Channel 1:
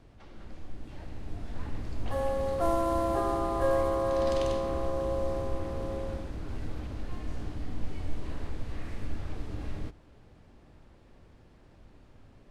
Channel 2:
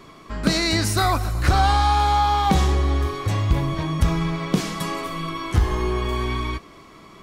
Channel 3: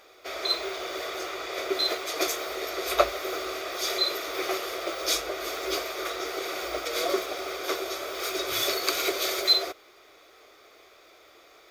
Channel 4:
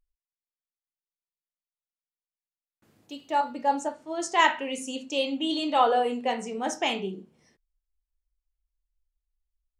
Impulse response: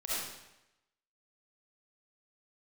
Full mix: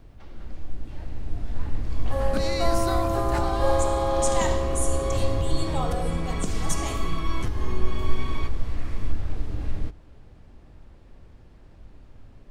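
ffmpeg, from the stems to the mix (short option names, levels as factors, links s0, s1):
-filter_complex "[0:a]lowshelf=f=80:g=9.5,volume=1.26[s0];[1:a]acompressor=threshold=0.0562:ratio=6,adelay=1900,volume=0.668[s1];[3:a]equalizer=f=5400:w=1.2:g=-7.5,aexciter=amount=9.2:drive=7:freq=4400,volume=0.251,asplit=2[s2][s3];[s3]volume=0.266[s4];[4:a]atrim=start_sample=2205[s5];[s4][s5]afir=irnorm=-1:irlink=0[s6];[s0][s1][s2][s6]amix=inputs=4:normalize=0"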